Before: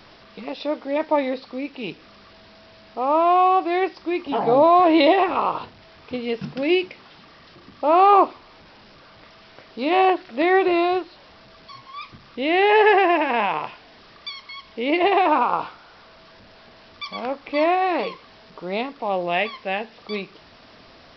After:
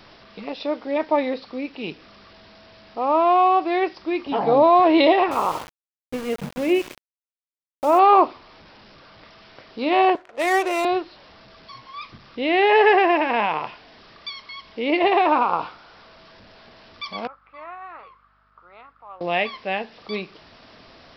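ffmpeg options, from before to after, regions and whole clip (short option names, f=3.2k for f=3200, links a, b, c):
-filter_complex "[0:a]asettb=1/sr,asplit=3[a][b][c];[a]atrim=end=5.314[d];[b]atrim=start=5.31:end=7.99,asetpts=PTS-STARTPTS,afade=t=in:d=0.004:c=qsin,afade=t=out:st=2.676:d=0.004:c=qsin,lowpass=2.2k,aecho=1:1:98|196|294|392|490:0.178|0.0996|0.0558|0.0312|0.0175,atrim=end_sample=118188,aeval=exprs='val(0)*gte(abs(val(0)),0.0282)':c=same[e];[c]atrim=start=7.986[f];[d][e]acrossfade=d=0.004:c1=hsin:c2=qsin[g];[g][f]acrossfade=d=0.004:c1=qsin:c2=hsin,asettb=1/sr,asplit=3[h][i][j];[h]atrim=end=10.154[k];[i]atrim=start=10.15:end=10.85,asetpts=PTS-STARTPTS,afade=t=in:d=0.004:c=qsin,afade=t=out:st=0.696:d=0.004:c=qsin,highpass=f=420:w=0.5412,highpass=f=420:w=1.3066,adynamicsmooth=sensitivity=7:basefreq=710[l];[j]atrim=start=10.846[m];[k][l]acrossfade=d=0.004:c1=hsin:c2=qsin[n];[n][m]acrossfade=d=0.004:c1=qsin:c2=hsin,asettb=1/sr,asplit=3[o][p][q];[o]atrim=end=17.274[r];[p]atrim=start=17.27:end=19.21,asetpts=PTS-STARTPTS,afade=t=in:d=0.004:c=qsin,afade=t=out:st=1.936:d=0.004:c=qsin,bandpass=f=1.3k:t=q:w=8.3,aeval=exprs='val(0)+0.000501*(sin(2*PI*50*n/s)+sin(2*PI*2*50*n/s)/2+sin(2*PI*3*50*n/s)/3+sin(2*PI*4*50*n/s)/4+sin(2*PI*5*50*n/s)/5)':c=same[s];[q]atrim=start=19.206[t];[r][s]acrossfade=d=0.004:c1=hsin:c2=qsin[u];[u][t]acrossfade=d=0.004:c1=qsin:c2=hsin"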